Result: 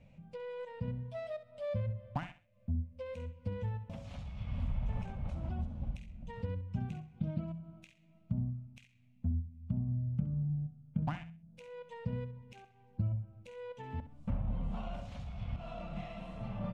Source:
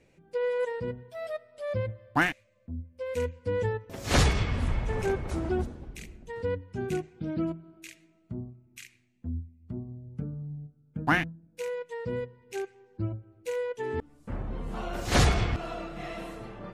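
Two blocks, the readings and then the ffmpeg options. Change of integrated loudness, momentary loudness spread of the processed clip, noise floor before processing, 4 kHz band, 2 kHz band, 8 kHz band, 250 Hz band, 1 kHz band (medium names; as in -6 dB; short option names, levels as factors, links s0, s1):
-8.0 dB, 12 LU, -64 dBFS, under -20 dB, -21.0 dB, under -25 dB, -6.5 dB, -13.5 dB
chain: -filter_complex "[0:a]aexciter=amount=12.7:drive=3.2:freq=2600,acompressor=threshold=0.0158:ratio=12,firequalizer=gain_entry='entry(210,0);entry(370,-25);entry(560,-5);entry(4400,-20);entry(9900,-14)':delay=0.05:min_phase=1,adynamicsmooth=sensitivity=6.5:basefreq=1700,asplit=2[s0][s1];[s1]aecho=0:1:65|130|195:0.237|0.0617|0.016[s2];[s0][s2]amix=inputs=2:normalize=0,volume=2.37"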